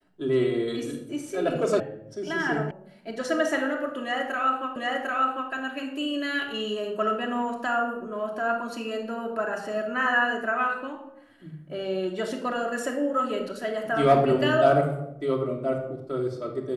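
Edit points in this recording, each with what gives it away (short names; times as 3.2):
1.8 sound cut off
2.71 sound cut off
4.76 repeat of the last 0.75 s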